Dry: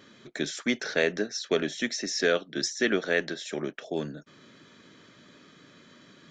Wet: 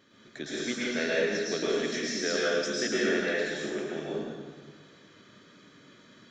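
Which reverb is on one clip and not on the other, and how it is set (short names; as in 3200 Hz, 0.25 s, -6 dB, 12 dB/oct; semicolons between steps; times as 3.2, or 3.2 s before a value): plate-style reverb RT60 1.6 s, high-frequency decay 0.85×, pre-delay 95 ms, DRR -7 dB; gain -8.5 dB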